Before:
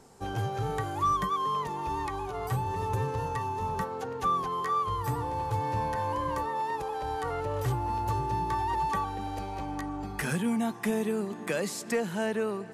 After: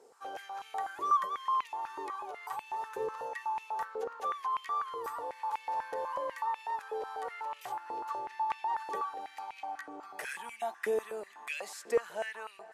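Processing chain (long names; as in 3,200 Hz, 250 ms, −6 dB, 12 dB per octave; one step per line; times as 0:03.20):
0:07.79–0:08.76: high-shelf EQ 12,000 Hz → 7,900 Hz −10 dB
high-pass on a step sequencer 8.1 Hz 450–2,500 Hz
level −9 dB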